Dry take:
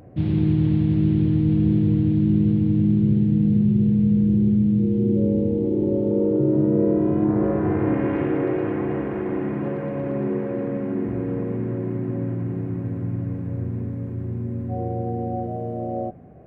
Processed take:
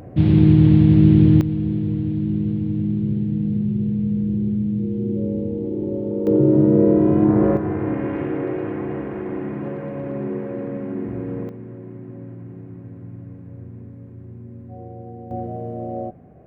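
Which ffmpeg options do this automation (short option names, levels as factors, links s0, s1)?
-af "asetnsamples=n=441:p=0,asendcmd='1.41 volume volume -3.5dB;6.27 volume volume 4.5dB;7.57 volume volume -2dB;11.49 volume volume -10dB;15.31 volume volume -1dB',volume=2.24"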